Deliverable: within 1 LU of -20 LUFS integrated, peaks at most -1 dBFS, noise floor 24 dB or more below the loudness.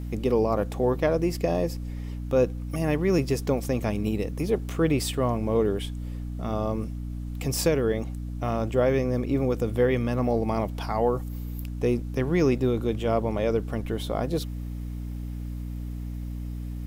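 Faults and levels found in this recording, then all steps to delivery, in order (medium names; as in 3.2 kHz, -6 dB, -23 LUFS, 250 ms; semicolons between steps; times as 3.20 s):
hum 60 Hz; highest harmonic 300 Hz; hum level -30 dBFS; loudness -27.0 LUFS; peak level -11.0 dBFS; loudness target -20.0 LUFS
-> hum notches 60/120/180/240/300 Hz; trim +7 dB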